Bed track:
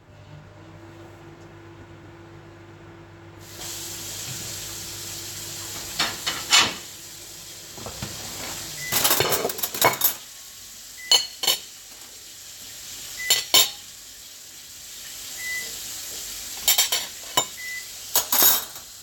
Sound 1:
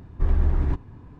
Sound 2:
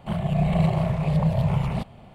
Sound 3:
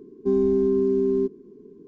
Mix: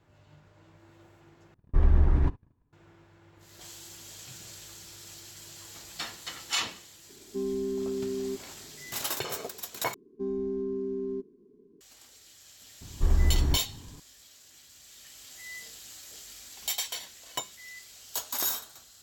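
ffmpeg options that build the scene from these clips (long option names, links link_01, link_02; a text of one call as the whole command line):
ffmpeg -i bed.wav -i cue0.wav -i cue1.wav -i cue2.wav -filter_complex "[1:a]asplit=2[link_01][link_02];[3:a]asplit=2[link_03][link_04];[0:a]volume=-13dB[link_05];[link_01]agate=range=-27dB:threshold=-40dB:ratio=16:release=100:detection=peak[link_06];[link_05]asplit=3[link_07][link_08][link_09];[link_07]atrim=end=1.544[link_10];[link_06]atrim=end=1.19,asetpts=PTS-STARTPTS,volume=-0.5dB[link_11];[link_08]atrim=start=2.726:end=9.944[link_12];[link_04]atrim=end=1.87,asetpts=PTS-STARTPTS,volume=-11.5dB[link_13];[link_09]atrim=start=11.806[link_14];[link_03]atrim=end=1.87,asetpts=PTS-STARTPTS,volume=-11dB,afade=type=in:duration=0.004:curve=hsin,afade=type=out:start_time=1.866:duration=0.004:curve=hsin,adelay=7090[link_15];[link_02]atrim=end=1.19,asetpts=PTS-STARTPTS,volume=-2.5dB,afade=type=in:duration=0.004:curve=hsin,afade=type=out:start_time=1.186:duration=0.004:curve=hsin,adelay=12810[link_16];[link_10][link_11]acrossfade=duration=0.004:curve1=hsin:curve2=hsin[link_17];[link_17][link_12]acrossfade=duration=0.004:curve1=hsin:curve2=hsin[link_18];[link_18][link_13]acrossfade=duration=0.004:curve1=hsin:curve2=hsin[link_19];[link_19][link_14]acrossfade=duration=0.004:curve1=hsin:curve2=hsin[link_20];[link_20][link_15][link_16]amix=inputs=3:normalize=0" out.wav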